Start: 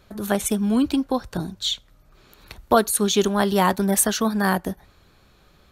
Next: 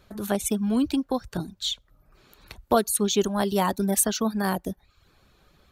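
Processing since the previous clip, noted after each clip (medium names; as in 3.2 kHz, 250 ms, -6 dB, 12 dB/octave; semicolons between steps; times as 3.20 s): reverb removal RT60 0.56 s; dynamic bell 1.6 kHz, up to -5 dB, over -34 dBFS, Q 0.93; trim -2.5 dB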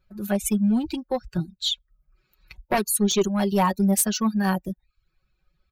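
expander on every frequency bin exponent 1.5; sine folder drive 8 dB, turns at -8.5 dBFS; comb 5.4 ms, depth 63%; trim -8.5 dB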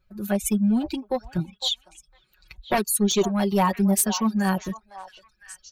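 repeats whose band climbs or falls 506 ms, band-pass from 860 Hz, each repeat 1.4 oct, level -10 dB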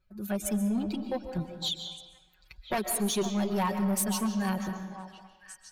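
algorithmic reverb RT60 1.2 s, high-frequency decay 0.7×, pre-delay 100 ms, DRR 7.5 dB; saturation -16.5 dBFS, distortion -17 dB; trim -5.5 dB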